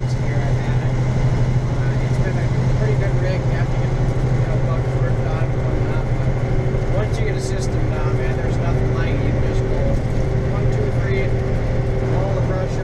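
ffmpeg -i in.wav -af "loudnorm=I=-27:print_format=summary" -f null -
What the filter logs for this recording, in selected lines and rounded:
Input Integrated:    -20.1 LUFS
Input True Peak:      -7.1 dBTP
Input LRA:             1.2 LU
Input Threshold:     -30.1 LUFS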